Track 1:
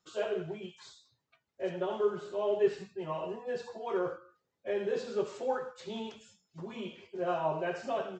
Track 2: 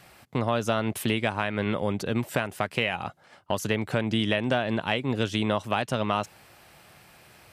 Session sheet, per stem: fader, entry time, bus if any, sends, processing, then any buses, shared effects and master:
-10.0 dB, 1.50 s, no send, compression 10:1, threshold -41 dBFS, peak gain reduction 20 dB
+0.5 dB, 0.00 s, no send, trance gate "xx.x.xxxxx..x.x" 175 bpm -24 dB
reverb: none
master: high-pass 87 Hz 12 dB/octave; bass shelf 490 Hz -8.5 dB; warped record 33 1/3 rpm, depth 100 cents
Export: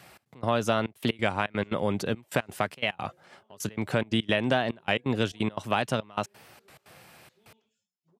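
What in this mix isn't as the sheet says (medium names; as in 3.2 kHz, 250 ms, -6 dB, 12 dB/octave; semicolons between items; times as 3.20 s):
stem 1 -10.0 dB -> -22.0 dB; master: missing bass shelf 490 Hz -8.5 dB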